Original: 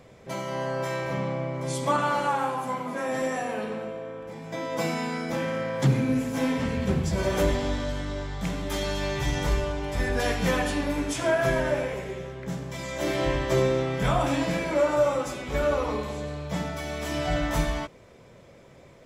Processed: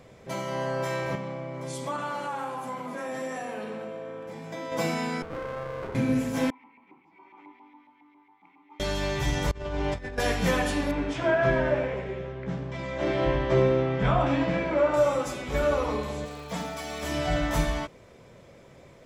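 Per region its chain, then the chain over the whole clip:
1.15–4.72 s: compression 2:1, threshold -34 dBFS + high-pass 120 Hz
5.22–5.95 s: Chebyshev band-pass 390–1500 Hz, order 4 + sliding maximum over 33 samples
6.50–8.80 s: LFO band-pass saw up 7.3 Hz 900–2000 Hz + vowel filter u
9.51–10.18 s: compressor with a negative ratio -31 dBFS, ratio -0.5 + distance through air 80 m
10.91–14.94 s: low-pass 3.1 kHz + doubling 15 ms -12.5 dB
16.24–17.02 s: bass shelf 270 Hz -9 dB + comb 4.3 ms, depth 57% + crackle 340 per s -42 dBFS
whole clip: none

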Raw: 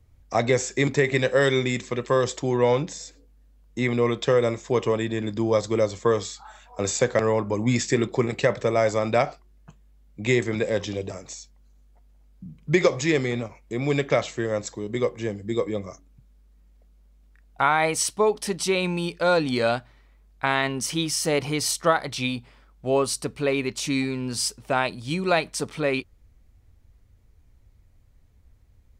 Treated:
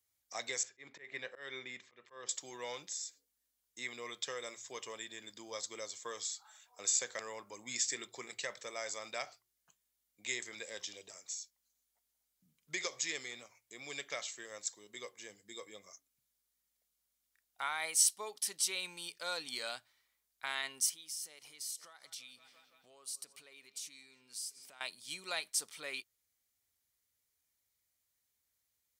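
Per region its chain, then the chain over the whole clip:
0.63–2.29 s: low-pass 2.2 kHz + slow attack 189 ms
20.89–24.81 s: filtered feedback delay 170 ms, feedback 76%, low-pass 4.9 kHz, level -23 dB + compression 5:1, threshold -37 dBFS
whole clip: differentiator; band-stop 2.6 kHz, Q 19; de-hum 57.52 Hz, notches 2; trim -2 dB

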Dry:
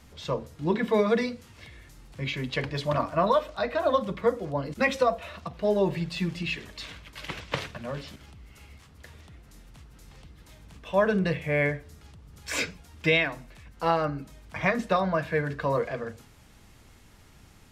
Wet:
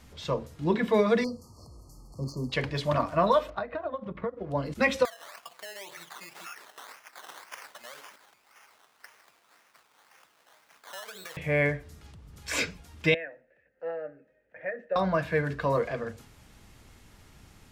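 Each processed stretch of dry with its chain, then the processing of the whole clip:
1.24–2.52 s: hard clipper -25 dBFS + brick-wall FIR band-stop 1.3–4.2 kHz
3.50–4.51 s: low-pass 2 kHz + compression 4:1, threshold -35 dBFS + transient shaper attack +9 dB, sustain -9 dB
5.05–11.37 s: decimation with a swept rate 15×, swing 60% 1.9 Hz + high-pass 880 Hz + compression 4:1, threshold -39 dBFS
13.14–14.96 s: vowel filter e + resonant high shelf 2.3 kHz -12.5 dB, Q 1.5
whole clip: none

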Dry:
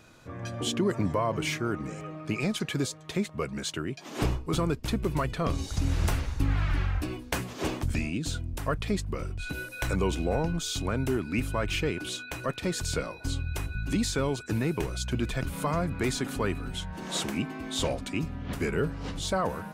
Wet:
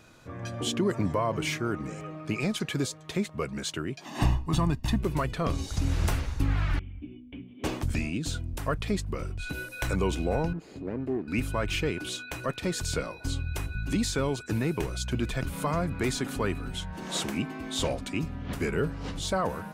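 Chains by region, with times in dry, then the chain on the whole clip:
4.05–5.01 s: treble shelf 5.1 kHz -4.5 dB + comb 1.1 ms, depth 75%
6.79–7.64 s: cascade formant filter i + comb of notches 160 Hz
10.53–11.28 s: comb filter that takes the minimum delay 0.44 ms + band-pass filter 350 Hz, Q 0.99
whole clip: none

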